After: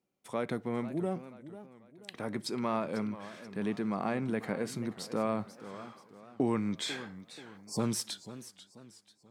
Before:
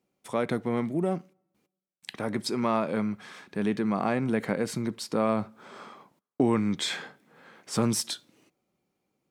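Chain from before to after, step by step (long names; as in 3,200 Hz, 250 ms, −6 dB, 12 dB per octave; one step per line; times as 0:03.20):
time-frequency box erased 0:07.57–0:07.80, 1,100–4,200 Hz
feedback echo with a swinging delay time 488 ms, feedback 41%, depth 187 cents, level −14.5 dB
level −6 dB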